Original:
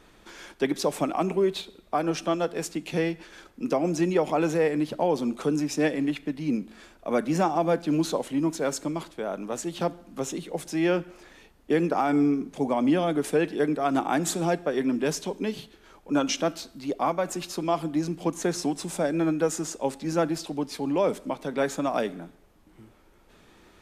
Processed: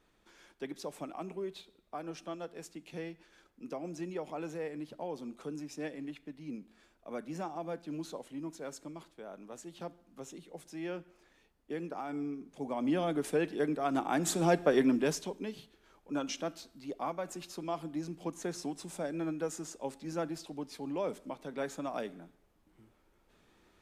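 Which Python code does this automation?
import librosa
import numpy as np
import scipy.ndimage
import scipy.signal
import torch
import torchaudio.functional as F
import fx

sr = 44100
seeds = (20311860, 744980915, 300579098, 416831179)

y = fx.gain(x, sr, db=fx.line((12.41, -15.5), (13.01, -7.0), (14.07, -7.0), (14.72, 1.0), (15.5, -11.0)))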